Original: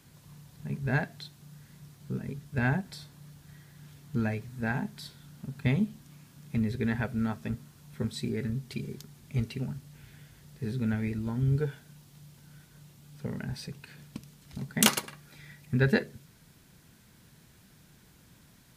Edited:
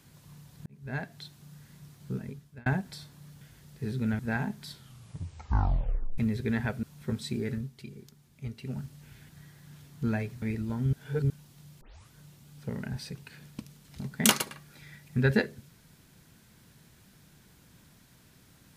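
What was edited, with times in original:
0.66–1.32 s: fade in
2.13–2.66 s: fade out
3.41–4.54 s: swap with 10.21–10.99 s
5.08 s: tape stop 1.45 s
7.18–7.75 s: delete
8.43–9.71 s: dip -8.5 dB, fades 0.22 s
11.50–11.87 s: reverse
12.38 s: tape start 0.31 s

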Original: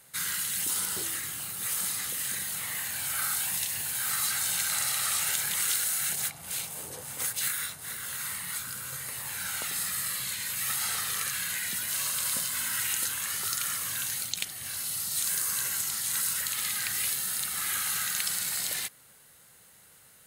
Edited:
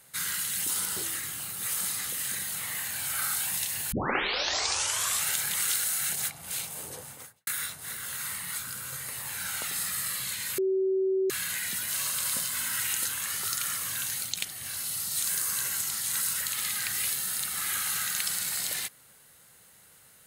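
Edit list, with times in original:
3.92 s: tape start 1.32 s
6.93–7.47 s: studio fade out
10.58–11.30 s: bleep 381 Hz -23 dBFS

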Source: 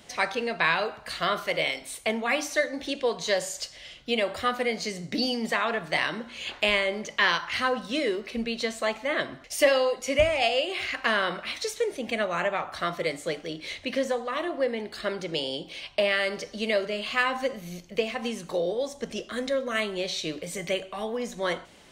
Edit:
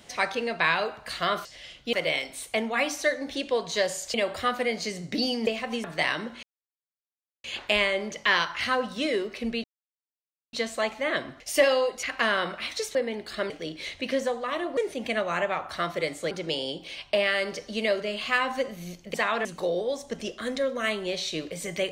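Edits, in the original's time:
3.66–4.14 s: move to 1.45 s
5.47–5.78 s: swap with 17.99–18.36 s
6.37 s: insert silence 1.01 s
8.57 s: insert silence 0.89 s
10.07–10.88 s: delete
11.80–13.34 s: swap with 14.61–15.16 s

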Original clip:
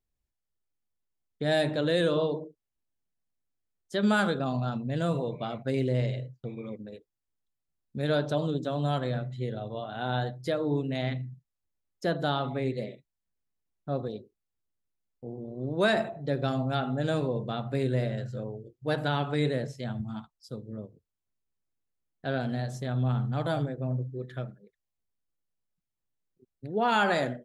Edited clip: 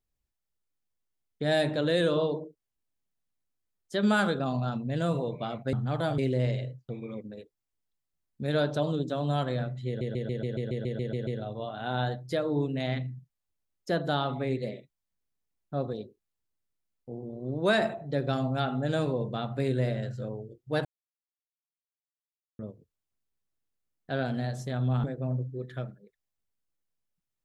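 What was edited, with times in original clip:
9.42 s: stutter 0.14 s, 11 plays
19.00–20.74 s: mute
23.19–23.64 s: move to 5.73 s

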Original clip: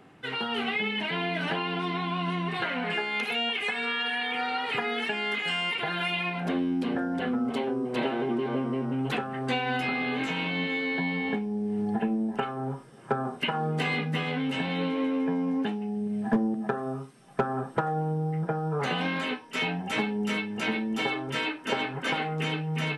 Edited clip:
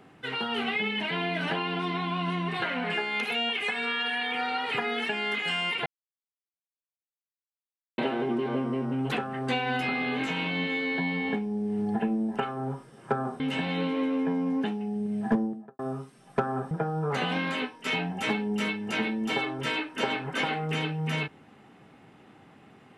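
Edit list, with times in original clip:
5.86–7.98 s: mute
13.40–14.41 s: delete
16.30–16.80 s: studio fade out
17.72–18.40 s: delete

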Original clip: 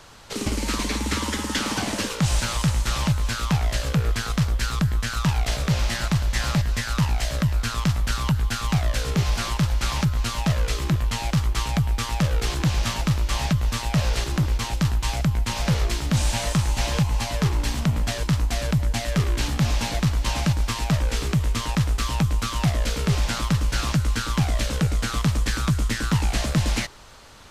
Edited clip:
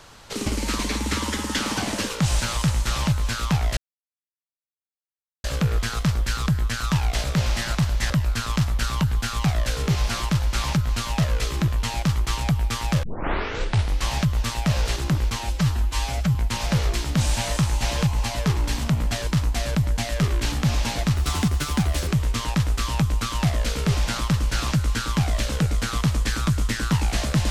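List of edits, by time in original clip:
3.77 s: insert silence 1.67 s
6.43–7.38 s: delete
12.31 s: tape start 1.05 s
14.67–15.31 s: stretch 1.5×
20.12–21.28 s: speed 127%

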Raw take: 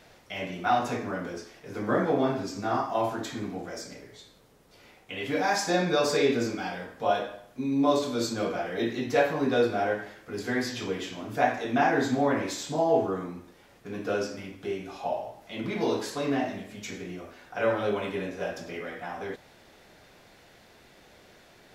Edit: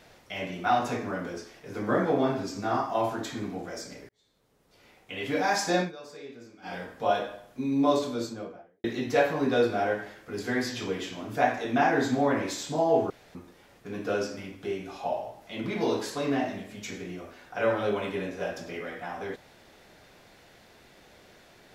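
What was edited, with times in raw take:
4.09–5.23 s: fade in
5.80–6.74 s: dip -20 dB, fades 0.12 s
7.85–8.84 s: studio fade out
13.10–13.35 s: room tone

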